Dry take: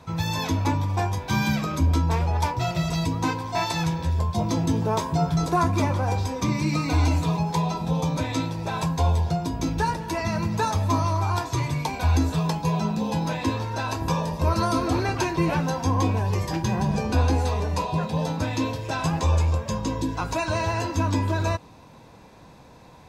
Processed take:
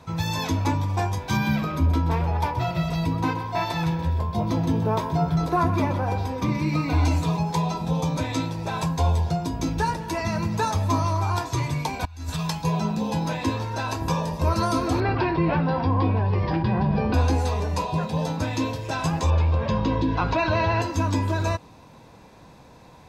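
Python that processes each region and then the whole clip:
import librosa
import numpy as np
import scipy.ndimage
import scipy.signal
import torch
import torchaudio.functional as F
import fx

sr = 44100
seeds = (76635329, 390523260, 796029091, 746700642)

y = fx.chain(x, sr, fx.peak_eq(hz=7300.0, db=-11.5, octaves=1.2),
    fx.echo_single(ms=127, db=-12.0), at=(1.37, 7.05))
y = fx.chain(y, sr, fx.peak_eq(hz=380.0, db=-13.5, octaves=2.5),
    fx.over_compress(threshold_db=-29.0, ratio=-0.5), at=(12.05, 12.64))
y = fx.chain(y, sr, fx.air_absorb(metres=260.0),
    fx.resample_bad(factor=4, down='none', up='filtered'),
    fx.env_flatten(amount_pct=50), at=(15.0, 17.14))
y = fx.chain(y, sr, fx.lowpass(hz=4100.0, slope=24),
    fx.env_flatten(amount_pct=50), at=(19.3, 20.82))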